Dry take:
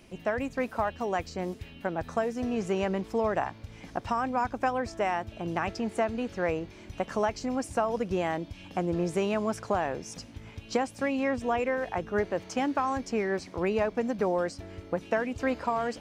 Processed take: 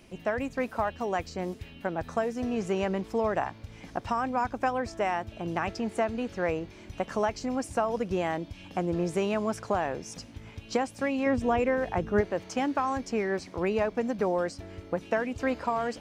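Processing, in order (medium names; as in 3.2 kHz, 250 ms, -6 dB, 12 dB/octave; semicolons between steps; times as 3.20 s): 11.26–12.21 s: bass shelf 360 Hz +7.5 dB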